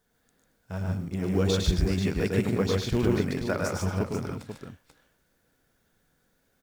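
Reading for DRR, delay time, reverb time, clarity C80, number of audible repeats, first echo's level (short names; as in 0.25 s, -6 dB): none, 0.105 s, none, none, 4, -4.5 dB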